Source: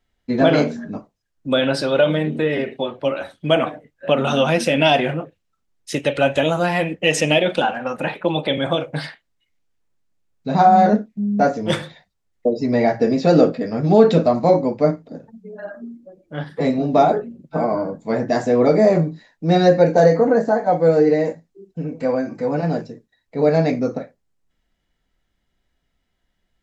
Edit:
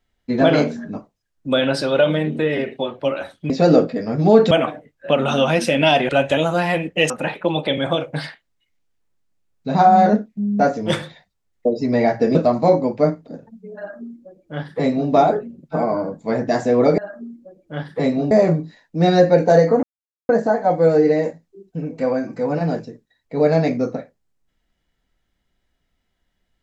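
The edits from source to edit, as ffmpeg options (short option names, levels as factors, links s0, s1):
-filter_complex "[0:a]asplit=9[s0][s1][s2][s3][s4][s5][s6][s7][s8];[s0]atrim=end=3.502[s9];[s1]atrim=start=13.148:end=14.162[s10];[s2]atrim=start=3.498:end=5.082[s11];[s3]atrim=start=6.148:end=7.162[s12];[s4]atrim=start=7.898:end=13.152[s13];[s5]atrim=start=14.158:end=18.792[s14];[s6]atrim=start=15.588:end=16.922[s15];[s7]atrim=start=18.788:end=20.31,asetpts=PTS-STARTPTS,afade=t=out:st=1.518:d=0.004:c=hsin,apad=pad_dur=0.46[s16];[s8]atrim=start=20.31,asetpts=PTS-STARTPTS,afade=t=in:d=0.004:c=hsin[s17];[s9][s10]acrossfade=d=0.004:c1=hsin:c2=hsin[s18];[s18][s11]acrossfade=d=0.004:c1=hsin:c2=hsin[s19];[s19][s12]acrossfade=d=0.004:c1=hsin:c2=hsin[s20];[s20][s13]acrossfade=d=0.004:c1=hsin:c2=hsin[s21];[s21][s14]acrossfade=d=0.004:c1=hsin:c2=hsin[s22];[s22][s15]acrossfade=d=0.004:c1=hsin:c2=hsin[s23];[s16][s17]concat=n=2:v=0:a=1[s24];[s23][s24]acrossfade=d=0.004:c1=hsin:c2=hsin"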